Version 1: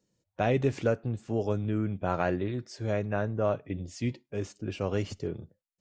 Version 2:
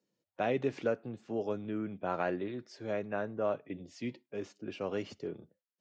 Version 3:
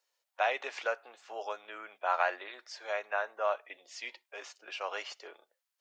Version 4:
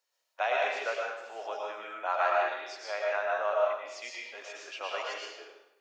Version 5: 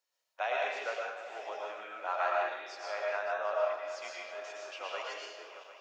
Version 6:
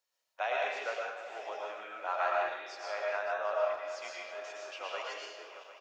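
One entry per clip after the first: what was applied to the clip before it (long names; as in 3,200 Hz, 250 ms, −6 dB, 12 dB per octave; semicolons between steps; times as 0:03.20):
three-way crossover with the lows and the highs turned down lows −19 dB, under 170 Hz, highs −15 dB, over 5,700 Hz; level −4 dB
high-pass filter 740 Hz 24 dB per octave; level +8 dB
convolution reverb RT60 0.90 s, pre-delay 75 ms, DRR −2.5 dB; level −1.5 dB
feedback delay that plays each chunk backwards 376 ms, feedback 73%, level −13.5 dB; level −4 dB
far-end echo of a speakerphone 110 ms, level −23 dB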